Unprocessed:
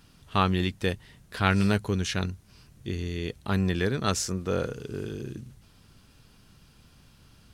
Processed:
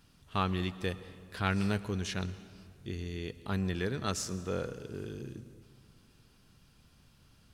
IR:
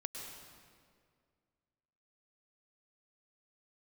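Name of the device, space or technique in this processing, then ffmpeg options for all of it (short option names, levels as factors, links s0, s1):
saturated reverb return: -filter_complex "[0:a]asplit=2[s0][s1];[1:a]atrim=start_sample=2205[s2];[s1][s2]afir=irnorm=-1:irlink=0,asoftclip=type=tanh:threshold=0.0596,volume=0.422[s3];[s0][s3]amix=inputs=2:normalize=0,volume=0.376"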